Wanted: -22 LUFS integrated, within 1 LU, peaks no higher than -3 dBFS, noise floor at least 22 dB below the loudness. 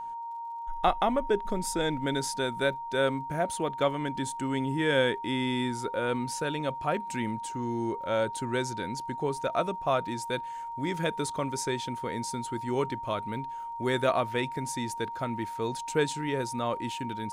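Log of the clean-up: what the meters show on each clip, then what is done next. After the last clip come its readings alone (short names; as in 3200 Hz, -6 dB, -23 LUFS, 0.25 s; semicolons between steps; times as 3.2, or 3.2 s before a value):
ticks 38/s; steady tone 930 Hz; tone level -35 dBFS; loudness -30.5 LUFS; peak -11.0 dBFS; loudness target -22.0 LUFS
-> de-click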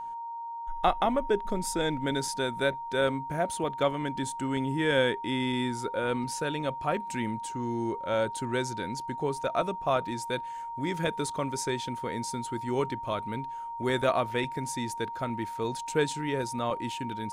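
ticks 0.17/s; steady tone 930 Hz; tone level -35 dBFS
-> notch 930 Hz, Q 30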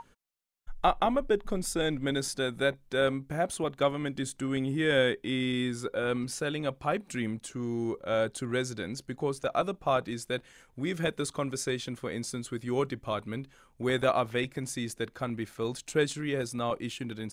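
steady tone none; loudness -31.0 LUFS; peak -11.0 dBFS; loudness target -22.0 LUFS
-> gain +9 dB; limiter -3 dBFS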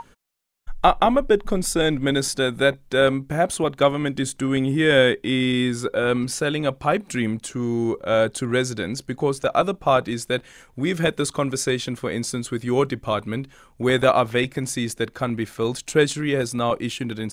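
loudness -22.5 LUFS; peak -3.0 dBFS; noise floor -55 dBFS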